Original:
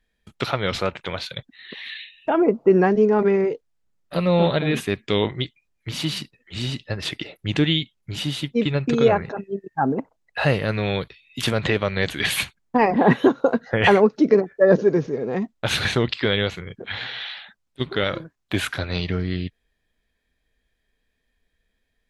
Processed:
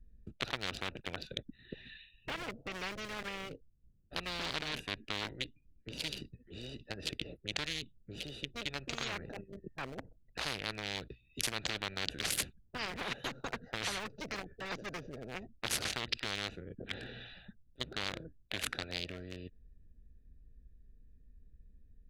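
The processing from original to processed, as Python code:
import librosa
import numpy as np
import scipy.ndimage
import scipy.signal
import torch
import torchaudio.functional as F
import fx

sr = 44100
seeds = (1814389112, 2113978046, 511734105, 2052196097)

y = fx.small_body(x, sr, hz=(290.0, 950.0, 2800.0), ring_ms=45, db=9, at=(4.39, 6.2))
y = fx.wiener(y, sr, points=41)
y = fx.tone_stack(y, sr, knobs='10-0-1')
y = fx.spectral_comp(y, sr, ratio=10.0)
y = y * librosa.db_to_amplitude(11.5)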